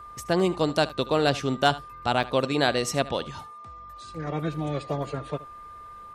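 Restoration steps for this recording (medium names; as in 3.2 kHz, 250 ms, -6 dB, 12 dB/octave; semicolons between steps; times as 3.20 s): clip repair -9 dBFS; band-stop 1.2 kHz, Q 30; interpolate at 0.89/2.23 s, 6 ms; inverse comb 75 ms -18 dB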